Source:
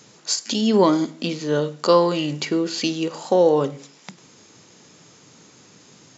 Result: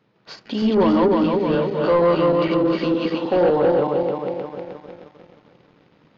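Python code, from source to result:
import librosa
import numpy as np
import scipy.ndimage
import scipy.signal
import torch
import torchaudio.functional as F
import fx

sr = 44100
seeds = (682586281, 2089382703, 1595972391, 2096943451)

y = fx.reverse_delay_fb(x, sr, ms=155, feedback_pct=71, wet_db=-0.5)
y = fx.leveller(y, sr, passes=2)
y = scipy.ndimage.gaussian_filter1d(y, 2.9, mode='constant')
y = F.gain(torch.from_numpy(y), -7.0).numpy()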